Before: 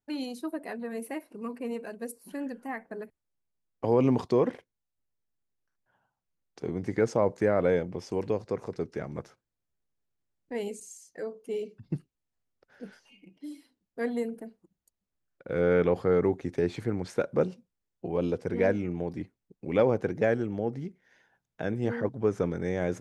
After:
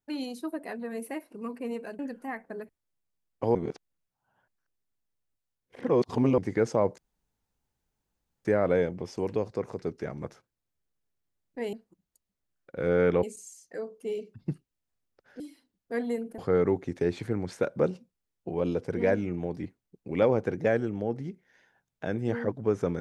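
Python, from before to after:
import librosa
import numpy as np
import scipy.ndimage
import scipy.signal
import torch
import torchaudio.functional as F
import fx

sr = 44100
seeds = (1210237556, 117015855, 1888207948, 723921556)

y = fx.edit(x, sr, fx.cut(start_s=1.99, length_s=0.41),
    fx.reverse_span(start_s=3.96, length_s=2.83),
    fx.insert_room_tone(at_s=7.39, length_s=1.47),
    fx.cut(start_s=12.84, length_s=0.63),
    fx.move(start_s=14.45, length_s=1.5, to_s=10.67), tone=tone)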